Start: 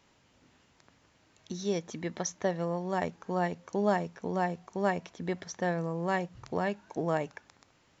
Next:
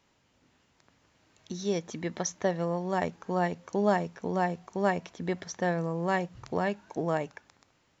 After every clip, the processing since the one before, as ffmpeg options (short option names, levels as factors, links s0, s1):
-af "dynaudnorm=f=360:g=7:m=1.88,volume=0.668"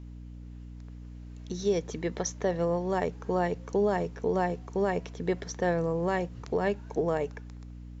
-af "equalizer=f=440:w=3.9:g=10,alimiter=limit=0.141:level=0:latency=1:release=90,aeval=exprs='val(0)+0.00794*(sin(2*PI*60*n/s)+sin(2*PI*2*60*n/s)/2+sin(2*PI*3*60*n/s)/3+sin(2*PI*4*60*n/s)/4+sin(2*PI*5*60*n/s)/5)':c=same"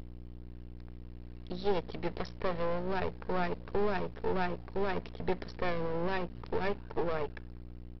-af "acompressor=mode=upward:threshold=0.00631:ratio=2.5,aresample=11025,aeval=exprs='max(val(0),0)':c=same,aresample=44100,volume=1.12"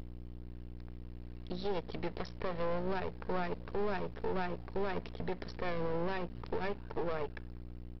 -af "alimiter=limit=0.0631:level=0:latency=1:release=174"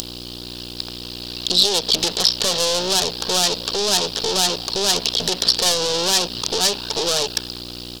-filter_complex "[0:a]acrossover=split=3100[s0][s1];[s1]acompressor=threshold=0.00126:ratio=4:attack=1:release=60[s2];[s0][s2]amix=inputs=2:normalize=0,asplit=2[s3][s4];[s4]highpass=f=720:p=1,volume=15.8,asoftclip=type=tanh:threshold=0.0668[s5];[s3][s5]amix=inputs=2:normalize=0,lowpass=f=3700:p=1,volume=0.501,aexciter=amount=12.8:drive=8.9:freq=3300,volume=2.11"